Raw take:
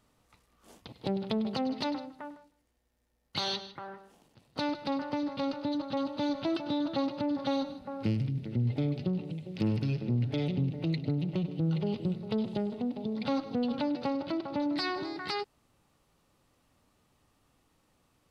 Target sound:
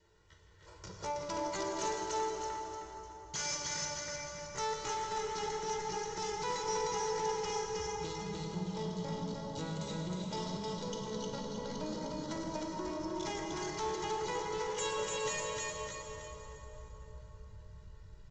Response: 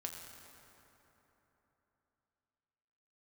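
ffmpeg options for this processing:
-filter_complex "[0:a]adynamicequalizer=threshold=0.00158:dfrequency=900:dqfactor=6.1:tfrequency=900:tqfactor=6.1:attack=5:release=100:ratio=0.375:range=3:mode=cutabove:tftype=bell,aecho=1:1:3.1:0.88,asubboost=boost=10:cutoff=95,acrossover=split=450|820[a][b][c];[a]acompressor=threshold=-40dB:ratio=6[d];[d][b][c]amix=inputs=3:normalize=0,aecho=1:1:308|616|924|1232|1540:0.708|0.262|0.0969|0.0359|0.0133,aresample=11025,asoftclip=type=tanh:threshold=-31.5dB,aresample=44100,asetrate=66075,aresample=44100,atempo=0.66742[e];[1:a]atrim=start_sample=2205,asetrate=32634,aresample=44100[f];[e][f]afir=irnorm=-1:irlink=0"

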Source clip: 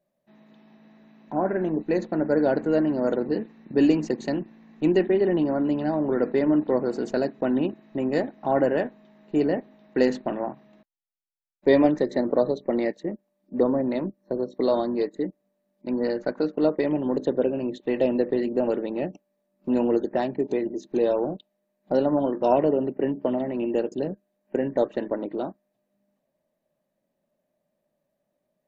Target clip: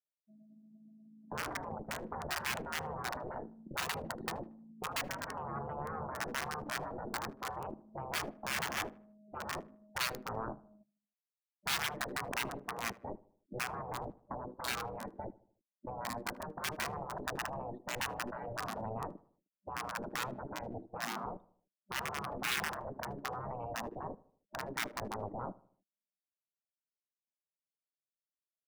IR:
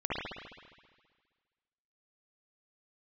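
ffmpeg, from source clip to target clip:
-filter_complex "[0:a]aeval=exprs='0.473*(cos(1*acos(clip(val(0)/0.473,-1,1)))-cos(1*PI/2))+0.075*(cos(8*acos(clip(val(0)/0.473,-1,1)))-cos(8*PI/2))':c=same,afftdn=nr=36:nf=-43,highshelf=f=4.8k:g=2.5,acrossover=split=150|1400[a][b][c];[c]acrusher=bits=4:mix=0:aa=0.000001[d];[a][b][d]amix=inputs=3:normalize=0,afftfilt=real='re*lt(hypot(re,im),0.126)':imag='im*lt(hypot(re,im),0.126)':win_size=1024:overlap=0.75,asplit=2[e][f];[f]adelay=77,lowpass=f=1.4k:p=1,volume=-19.5dB,asplit=2[g][h];[h]adelay=77,lowpass=f=1.4k:p=1,volume=0.48,asplit=2[i][j];[j]adelay=77,lowpass=f=1.4k:p=1,volume=0.48,asplit=2[k][l];[l]adelay=77,lowpass=f=1.4k:p=1,volume=0.48[m];[g][i][k][m]amix=inputs=4:normalize=0[n];[e][n]amix=inputs=2:normalize=0,volume=-3dB"

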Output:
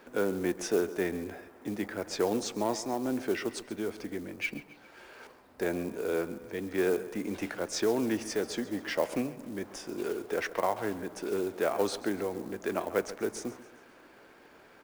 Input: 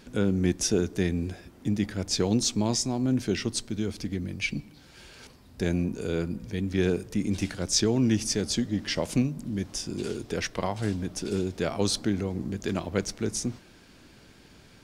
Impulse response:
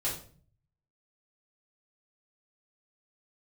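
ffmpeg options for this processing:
-filter_complex "[0:a]acrossover=split=340 2000:gain=0.0794 1 0.1[a][b][c];[a][b][c]amix=inputs=3:normalize=0,aecho=1:1:136|272|408|544:0.141|0.0678|0.0325|0.0156,asplit=2[d][e];[e]asoftclip=type=tanh:threshold=-34.5dB,volume=-7.5dB[f];[d][f]amix=inputs=2:normalize=0,acrusher=bits=6:mode=log:mix=0:aa=0.000001,highshelf=f=5.9k:g=7.5,volume=1.5dB"

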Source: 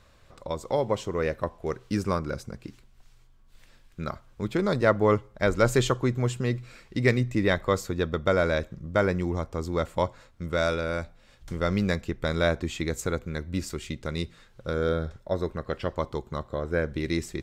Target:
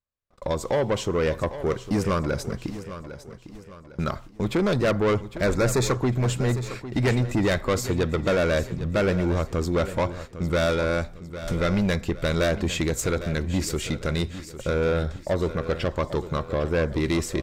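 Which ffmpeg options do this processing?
-filter_complex "[0:a]agate=range=-48dB:threshold=-47dB:ratio=16:detection=peak,asplit=2[a][b];[b]acompressor=threshold=-34dB:ratio=6,volume=0dB[c];[a][c]amix=inputs=2:normalize=0,asoftclip=type=tanh:threshold=-22.5dB,asettb=1/sr,asplit=3[d][e][f];[d]atrim=end=5.444[g];[e]atrim=start=5.44:end=6.02,asetpts=PTS-STARTPTS,afade=t=in:d=0.004:c=qsin,afade=t=out:st=0.576:d=0.004:c=qsin,asuperstop=centerf=3000:order=4:qfactor=2.9[h];[f]atrim=start=6.016[i];[g][h]acrossfade=d=0.004:c1=hsin:c2=qsin[j];[j][i]acrossfade=d=0.004:c1=qsin:c2=hsin,asplit=2[k][l];[l]aecho=0:1:804|1608|2412|3216:0.224|0.0895|0.0358|0.0143[m];[k][m]amix=inputs=2:normalize=0,volume=5dB"

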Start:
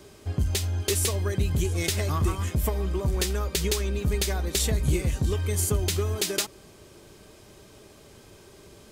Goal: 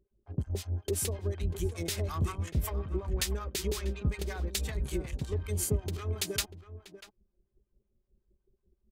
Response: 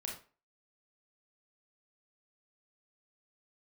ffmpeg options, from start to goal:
-filter_complex "[0:a]anlmdn=3.98,adynamicequalizer=threshold=0.00708:dfrequency=7500:dqfactor=1.3:tfrequency=7500:tqfactor=1.3:attack=5:release=100:ratio=0.375:range=2.5:mode=cutabove:tftype=bell,acrossover=split=740[a][b];[a]aeval=exprs='val(0)*(1-1/2+1/2*cos(2*PI*5.4*n/s))':c=same[c];[b]aeval=exprs='val(0)*(1-1/2-1/2*cos(2*PI*5.4*n/s))':c=same[d];[c][d]amix=inputs=2:normalize=0,asplit=2[e][f];[f]adelay=641.4,volume=-13dB,highshelf=f=4k:g=-14.4[g];[e][g]amix=inputs=2:normalize=0,volume=-2.5dB"

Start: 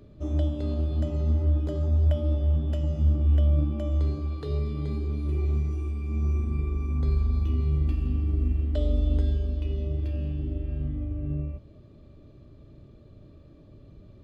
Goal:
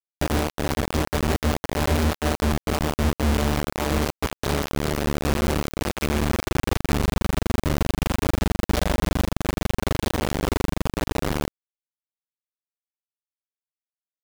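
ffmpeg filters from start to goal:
-af "acompressor=threshold=-31dB:ratio=8,acrusher=bits=4:mix=0:aa=0.000001,volume=9dB"

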